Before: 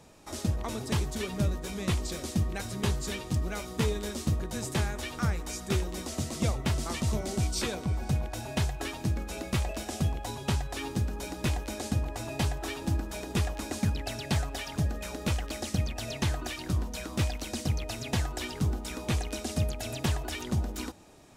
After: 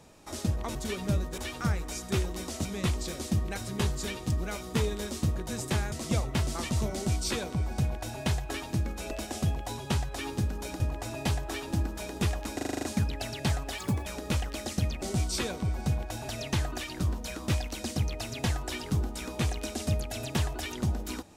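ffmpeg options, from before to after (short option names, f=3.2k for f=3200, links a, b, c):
-filter_complex "[0:a]asplit=18[a][b][c][d][e][f][g][h][i][j][k][l][m][n][o][p][q][r];[a]atrim=end=0.752[s];[b]atrim=start=1.058:end=1.692[t];[c]atrim=start=4.958:end=6.232[u];[d]atrim=start=1.688:end=4.962[v];[e]atrim=start=6.228:end=9.422[w];[f]atrim=start=9.688:end=11.382[x];[g]atrim=start=11.938:end=13.732[y];[h]atrim=start=13.688:end=13.732[z];[i]atrim=start=13.688:end=13.732[aa];[j]atrim=start=13.688:end=13.732[ab];[k]atrim=start=13.688:end=13.732[ac];[l]atrim=start=13.688:end=13.732[ad];[m]atrim=start=13.688:end=13.732[ae];[n]atrim=start=13.688:end=14.644[af];[o]atrim=start=14.64:end=15.02,asetpts=PTS-STARTPTS,asetrate=60417,aresample=44100,atrim=end_sample=12232,asetpts=PTS-STARTPTS[ag];[p]atrim=start=15.016:end=15.982[ah];[q]atrim=start=7.248:end=8.522[ai];[r]atrim=start=15.978[aj];[s][t]acrossfade=d=0.004:c1=hsin:c2=hsin[ak];[ak][u]acrossfade=d=0.004:c1=hsin:c2=hsin[al];[al][v]acrossfade=d=0.004:c1=hsin:c2=hsin[am];[am][w]acrossfade=d=0.004:c1=hsin:c2=hsin[an];[an][x]acrossfade=d=0.004:c1=hsin:c2=hsin[ao];[ao][y]acrossfade=d=0.004:c1=hsin:c2=hsin[ap];[ap][z]acrossfade=d=0.004:c1=hsin:c2=hsin[aq];[aq][aa]acrossfade=d=0.004:c1=hsin:c2=hsin[ar];[ar][ab]acrossfade=d=0.004:c1=hsin:c2=hsin[as];[as][ac]acrossfade=d=0.004:c1=hsin:c2=hsin[at];[at][ad]acrossfade=d=0.004:c1=hsin:c2=hsin[au];[au][ae]acrossfade=d=0.004:c1=hsin:c2=hsin[av];[av][af]acrossfade=d=0.004:c1=hsin:c2=hsin[aw];[aw][ag]acrossfade=d=0.004:c1=hsin:c2=hsin[ax];[ax][ah]acrossfade=d=0.004:c1=hsin:c2=hsin[ay];[ay][ai]acrossfade=d=0.004:c1=hsin:c2=hsin[az];[az][aj]acrossfade=d=0.004:c1=hsin:c2=hsin"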